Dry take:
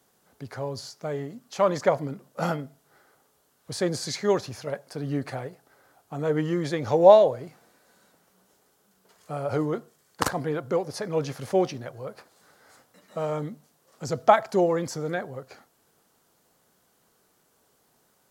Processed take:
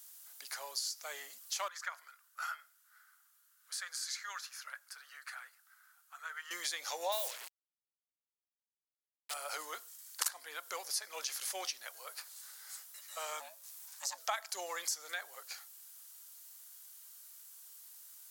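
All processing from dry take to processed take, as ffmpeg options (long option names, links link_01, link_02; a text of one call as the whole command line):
ffmpeg -i in.wav -filter_complex "[0:a]asettb=1/sr,asplit=3[link_01][link_02][link_03];[link_01]atrim=end=1.684[link_04];[link_02]atrim=start=1.68:end=6.51,asetpts=PTS-STARTPTS,afade=type=in:duration=0.004:curve=qsin,afade=type=out:start_time=4.826:duration=0.004:curve=qsin,bandpass=frequency=1400:width_type=q:width=3.8,aemphasis=mode=production:type=riaa[link_05];[link_03]atrim=start=6.506[link_06];[link_04][link_05]acrossfade=duration=0.004:curve1=hsin:curve2=qsin[link_07];[link_07][link_06]acrossfade=duration=0.004:curve1=qsin:curve2=hsin,asettb=1/sr,asplit=3[link_08][link_09][link_10];[link_08]atrim=end=7.124[link_11];[link_09]atrim=start=7.12:end=9.34,asetpts=PTS-STARTPTS,afade=type=in:duration=0.004:curve=qsin,afade=type=out:start_time=2.216:duration=0.004:curve=qsin,adynamicequalizer=threshold=0.00794:dfrequency=270:dqfactor=2.7:tfrequency=270:tqfactor=2.7:attack=5:release=100:ratio=0.375:range=3:mode=cutabove:tftype=bell,acrusher=bits=5:mix=0:aa=0.5[link_12];[link_10]atrim=start=9.336[link_13];[link_11][link_12]acrossfade=duration=0.004:curve1=hsin:curve2=qsin[link_14];[link_14][link_13]acrossfade=duration=0.004:curve1=qsin:curve2=hsin,asettb=1/sr,asplit=3[link_15][link_16][link_17];[link_15]atrim=end=13.404[link_18];[link_16]atrim=start=13.4:end=14.18,asetpts=PTS-STARTPTS,afade=type=in:duration=0.004:curve=qsin,afade=type=out:start_time=0.776:duration=0.004:curve=qsin,acompressor=mode=upward:threshold=-50dB:ratio=2.5:attack=3.2:release=140:knee=2.83:detection=peak,aeval=exprs='val(0)*sin(2*PI*410*n/s)':channel_layout=same[link_19];[link_17]atrim=start=14.176[link_20];[link_18][link_19]acrossfade=duration=0.004:curve1=hsin:curve2=qsin[link_21];[link_21][link_20]acrossfade=duration=0.004:curve1=qsin:curve2=hsin,highpass=880,aderivative,acompressor=threshold=-50dB:ratio=2.5,volume=12.5dB" out.wav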